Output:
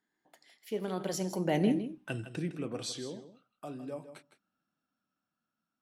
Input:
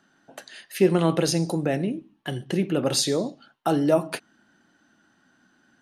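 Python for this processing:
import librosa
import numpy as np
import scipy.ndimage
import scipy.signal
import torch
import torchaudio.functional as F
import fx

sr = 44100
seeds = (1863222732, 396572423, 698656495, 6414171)

y = fx.doppler_pass(x, sr, speed_mps=38, closest_m=5.5, pass_at_s=1.76)
y = y + 10.0 ** (-12.0 / 20.0) * np.pad(y, (int(159 * sr / 1000.0), 0))[:len(y)]
y = y * 10.0 ** (1.5 / 20.0)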